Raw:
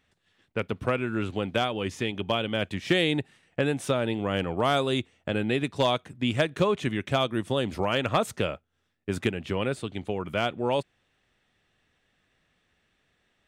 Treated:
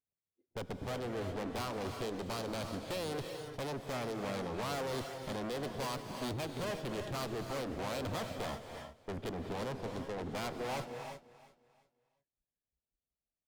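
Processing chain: local Wiener filter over 41 samples; spectral noise reduction 28 dB; valve stage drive 39 dB, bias 0.45; formant shift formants +5 st; on a send: feedback delay 351 ms, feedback 33%, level -17 dB; on the sum: gated-style reverb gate 390 ms rising, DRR 5 dB; trim +2 dB

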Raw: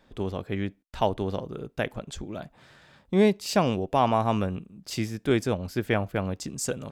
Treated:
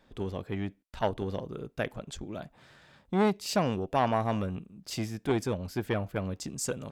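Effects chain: transformer saturation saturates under 630 Hz; trim -2.5 dB

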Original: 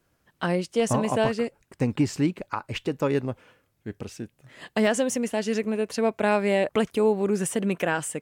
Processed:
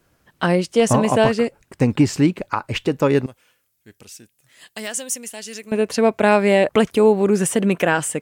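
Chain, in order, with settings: 3.26–5.72 s: pre-emphasis filter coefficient 0.9; trim +7.5 dB

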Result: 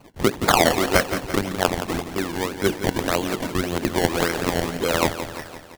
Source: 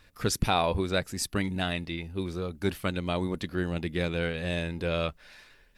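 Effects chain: LPC vocoder at 8 kHz pitch kept; in parallel at -2 dB: compression, threshold -39 dBFS, peak gain reduction 18 dB; on the sum: high-pass 150 Hz 12 dB/octave; hum notches 60/120/180/240/300/360/420/480/540 Hz; decimation with a swept rate 24×, swing 100% 1.8 Hz; harmonic-percussive split percussive +8 dB; feedback delay 171 ms, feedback 56%, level -10.5 dB; trim +2.5 dB

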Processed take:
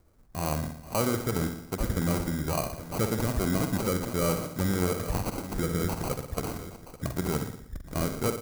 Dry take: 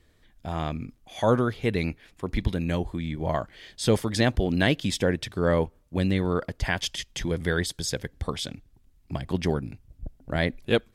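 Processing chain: delay 1074 ms -15.5 dB; sample-and-hold 25×; peak limiter -18.5 dBFS, peak gain reduction 9 dB; treble shelf 7.8 kHz +8 dB; feedback comb 110 Hz, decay 0.78 s, harmonics odd, mix 50%; feedback delay 77 ms, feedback 58%, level -7.5 dB; tempo 1.3×; peaking EQ 3 kHz -7.5 dB 0.74 oct; trim +5 dB

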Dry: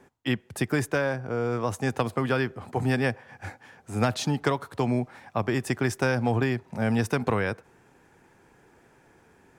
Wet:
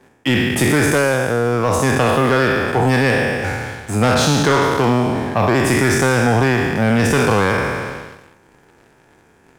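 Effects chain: spectral sustain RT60 1.60 s; waveshaping leveller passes 2; in parallel at 0 dB: compression, threshold -26 dBFS, peak gain reduction 11.5 dB

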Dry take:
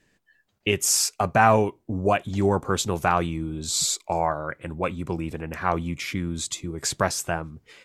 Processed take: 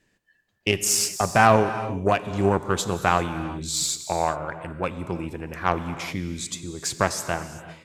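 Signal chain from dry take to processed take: Chebyshev shaper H 7 -25 dB, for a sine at -3 dBFS; gated-style reverb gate 420 ms flat, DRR 10.5 dB; trim +2 dB

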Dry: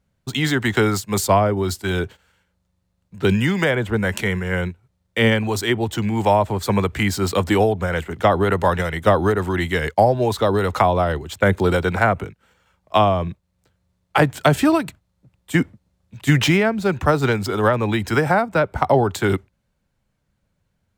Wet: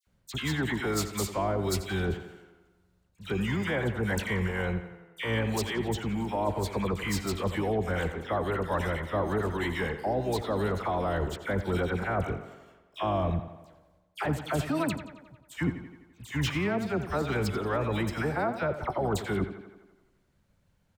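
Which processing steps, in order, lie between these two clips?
reverse; compression 5:1, threshold -28 dBFS, peak gain reduction 17 dB; reverse; harmony voices -12 st -10 dB; phase dispersion lows, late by 71 ms, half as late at 2 kHz; tape echo 87 ms, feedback 65%, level -10.5 dB, low-pass 5 kHz

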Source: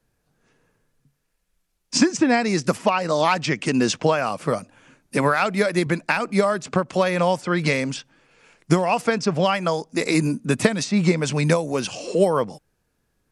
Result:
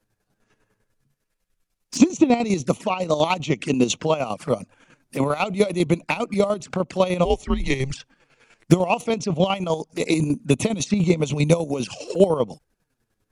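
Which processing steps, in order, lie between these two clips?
touch-sensitive flanger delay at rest 9.7 ms, full sweep at -19.5 dBFS; square tremolo 10 Hz, depth 60%, duty 40%; 7.25–7.94 s: frequency shift -130 Hz; trim +4 dB

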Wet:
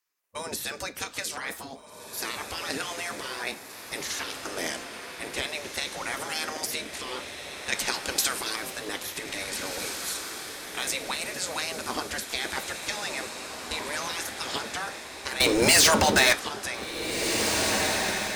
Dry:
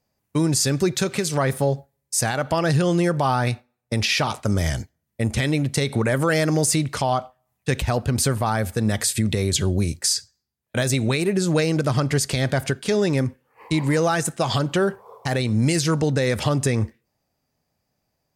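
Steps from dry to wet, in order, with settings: spectral gate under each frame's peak -15 dB weak; 7.72–8.56 s: peaking EQ 6.1 kHz +11 dB 2.7 oct; 15.40–16.33 s: waveshaping leveller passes 5; flange 0.12 Hz, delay 9.7 ms, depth 3.2 ms, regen -74%; echo that smears into a reverb 1817 ms, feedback 52%, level -5.5 dB; trim +3 dB

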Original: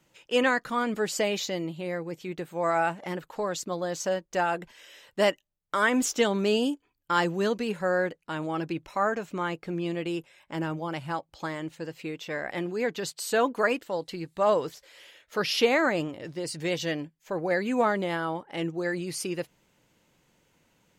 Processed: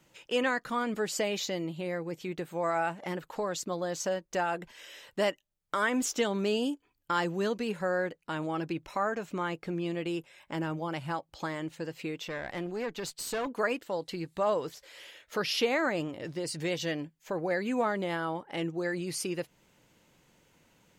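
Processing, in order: compression 1.5:1, threshold -39 dBFS, peak gain reduction 8 dB; 12.28–13.47 s: valve stage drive 29 dB, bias 0.5; trim +2 dB

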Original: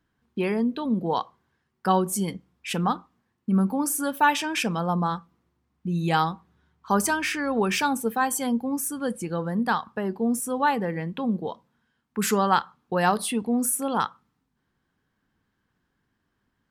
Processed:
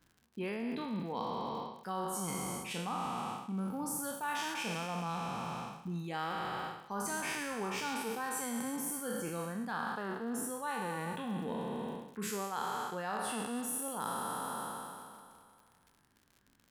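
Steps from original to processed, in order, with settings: spectral sustain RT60 2.22 s; reverb removal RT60 0.57 s; reverse; compression 6:1, threshold -36 dBFS, peak gain reduction 21 dB; reverse; crackle 77 per s -49 dBFS

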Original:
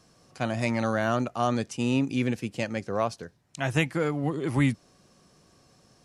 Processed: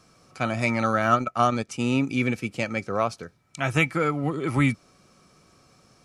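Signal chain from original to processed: small resonant body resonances 1.3/2.3 kHz, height 16 dB, ringing for 55 ms; 1.02–1.69 s: transient shaper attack +5 dB, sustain -10 dB; trim +1.5 dB

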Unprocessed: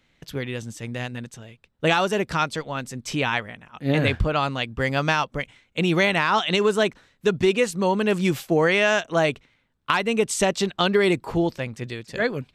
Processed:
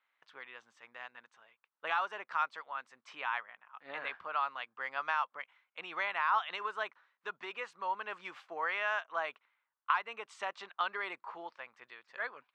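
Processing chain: ladder band-pass 1.3 kHz, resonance 45%

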